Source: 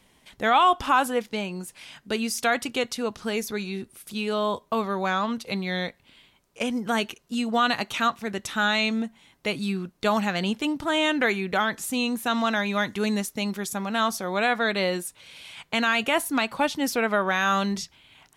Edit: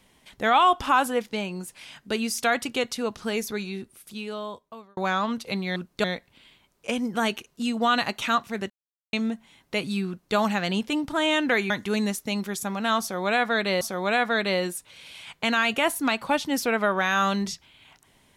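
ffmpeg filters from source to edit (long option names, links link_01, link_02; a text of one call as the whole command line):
ffmpeg -i in.wav -filter_complex "[0:a]asplit=8[link_01][link_02][link_03][link_04][link_05][link_06][link_07][link_08];[link_01]atrim=end=4.97,asetpts=PTS-STARTPTS,afade=type=out:start_time=3.49:duration=1.48[link_09];[link_02]atrim=start=4.97:end=5.762,asetpts=PTS-STARTPTS,afade=type=in:duration=0.004:curve=hsin[link_10];[link_03]atrim=start=9.798:end=10.082[link_11];[link_04]atrim=start=5.758:end=8.42,asetpts=PTS-STARTPTS,afade=type=out:start_time=2.658:duration=0.004:curve=hsin[link_12];[link_05]atrim=start=8.42:end=8.85,asetpts=PTS-STARTPTS,volume=0[link_13];[link_06]atrim=start=8.85:end=11.422,asetpts=PTS-STARTPTS,afade=type=in:duration=0.004:curve=hsin[link_14];[link_07]atrim=start=12.798:end=14.912[link_15];[link_08]atrim=start=14.108[link_16];[link_09][link_10]concat=n=2:v=0:a=1[link_17];[link_17][link_11]acrossfade=duration=0.004:curve1=hsin:curve2=hsin[link_18];[link_12][link_13][link_14]concat=n=3:v=0:a=1[link_19];[link_18][link_19]acrossfade=duration=0.004:curve1=hsin:curve2=hsin[link_20];[link_20][link_15]acrossfade=duration=0.004:curve1=hsin:curve2=hsin[link_21];[link_21][link_16]acrossfade=duration=0.004:curve1=hsin:curve2=hsin" out.wav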